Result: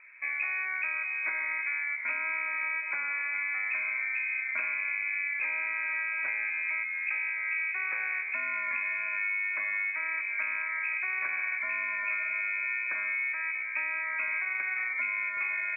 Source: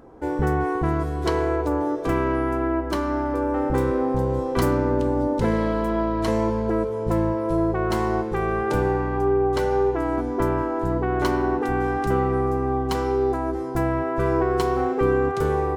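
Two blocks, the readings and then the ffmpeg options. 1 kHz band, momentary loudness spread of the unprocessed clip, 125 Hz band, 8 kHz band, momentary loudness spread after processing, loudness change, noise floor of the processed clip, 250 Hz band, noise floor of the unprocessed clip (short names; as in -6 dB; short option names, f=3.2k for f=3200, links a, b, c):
-16.5 dB, 3 LU, under -40 dB, under -35 dB, 1 LU, -6.5 dB, -35 dBFS, under -40 dB, -27 dBFS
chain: -af "lowpass=f=2.2k:t=q:w=0.5098,lowpass=f=2.2k:t=q:w=0.6013,lowpass=f=2.2k:t=q:w=0.9,lowpass=f=2.2k:t=q:w=2.563,afreqshift=-2600,acompressor=threshold=-22dB:ratio=10,volume=-6dB"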